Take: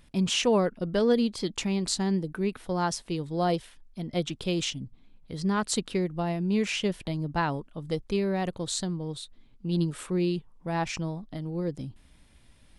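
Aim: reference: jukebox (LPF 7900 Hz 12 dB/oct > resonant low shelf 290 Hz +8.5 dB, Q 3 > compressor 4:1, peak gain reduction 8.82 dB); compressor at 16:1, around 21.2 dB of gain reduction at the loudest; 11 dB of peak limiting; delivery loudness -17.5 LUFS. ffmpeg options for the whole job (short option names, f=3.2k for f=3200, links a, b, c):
-af "acompressor=threshold=-40dB:ratio=16,alimiter=level_in=13.5dB:limit=-24dB:level=0:latency=1,volume=-13.5dB,lowpass=7.9k,lowshelf=f=290:t=q:w=3:g=8.5,acompressor=threshold=-38dB:ratio=4,volume=24.5dB"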